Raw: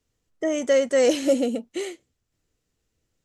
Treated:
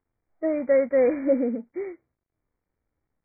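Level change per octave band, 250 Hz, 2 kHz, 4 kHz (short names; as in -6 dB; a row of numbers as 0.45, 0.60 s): -1.0 dB, -5.0 dB, under -40 dB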